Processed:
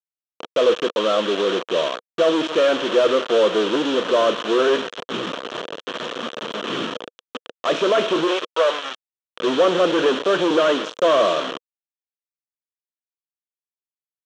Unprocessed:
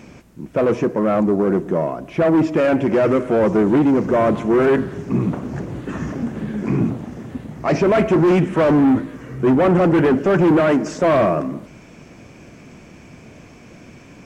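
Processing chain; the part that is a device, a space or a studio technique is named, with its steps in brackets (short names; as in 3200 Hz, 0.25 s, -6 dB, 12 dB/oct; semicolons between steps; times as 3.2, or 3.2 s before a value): 8.27–9.2 HPF 350 Hz -> 790 Hz 24 dB/oct; hand-held game console (bit-crush 4-bit; speaker cabinet 470–5400 Hz, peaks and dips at 490 Hz +6 dB, 800 Hz -8 dB, 1200 Hz +3 dB, 2100 Hz -8 dB, 3200 Hz +9 dB, 4800 Hz -10 dB)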